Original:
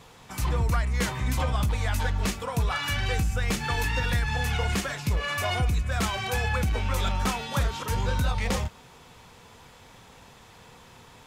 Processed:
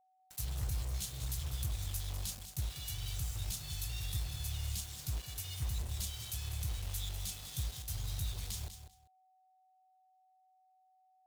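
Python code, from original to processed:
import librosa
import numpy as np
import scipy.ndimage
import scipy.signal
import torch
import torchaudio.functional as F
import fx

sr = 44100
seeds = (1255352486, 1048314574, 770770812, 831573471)

y = scipy.signal.sosfilt(scipy.signal.cheby1(3, 1.0, [130.0, 3500.0], 'bandstop', fs=sr, output='sos'), x)
y = fx.high_shelf(y, sr, hz=7500.0, db=12.0)
y = fx.quant_dither(y, sr, seeds[0], bits=6, dither='none')
y = y + 10.0 ** (-58.0 / 20.0) * np.sin(2.0 * np.pi * 750.0 * np.arange(len(y)) / sr)
y = fx.cheby_harmonics(y, sr, harmonics=(3,), levels_db=(-19,), full_scale_db=-14.0)
y = fx.echo_feedback(y, sr, ms=196, feedback_pct=17, wet_db=-10.5)
y = y * 10.0 ** (-8.5 / 20.0)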